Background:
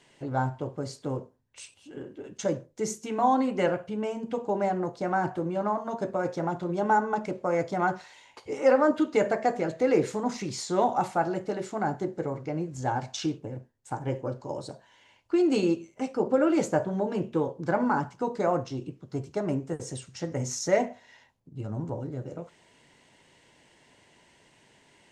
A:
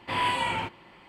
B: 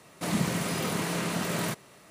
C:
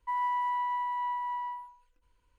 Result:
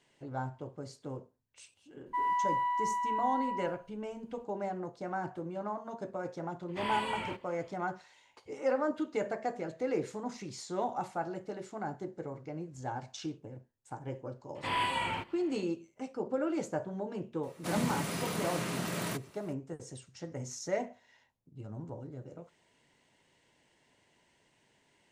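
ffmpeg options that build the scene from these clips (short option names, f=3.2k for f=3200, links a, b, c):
-filter_complex "[1:a]asplit=2[a][b];[0:a]volume=-9.5dB[c];[3:a]atrim=end=2.38,asetpts=PTS-STARTPTS,volume=-0.5dB,afade=t=in:d=0.004:c=hsin,afade=t=out:st=2.376:d=0.004:c=hsin,adelay=2060[d];[a]atrim=end=1.08,asetpts=PTS-STARTPTS,volume=-9dB,afade=t=in:d=0.004:c=hsin,afade=t=out:st=1.076:d=0.004:c=hsin,adelay=6680[e];[b]atrim=end=1.08,asetpts=PTS-STARTPTS,volume=-5dB,afade=t=in:d=0.004:c=hsin,afade=t=out:st=1.076:d=0.004:c=hsin,adelay=14550[f];[2:a]atrim=end=2.1,asetpts=PTS-STARTPTS,volume=-5.5dB,afade=t=in:d=0.004:c=hsin,afade=t=out:st=2.096:d=0.004:c=hsin,adelay=17430[g];[c][d][e][f][g]amix=inputs=5:normalize=0"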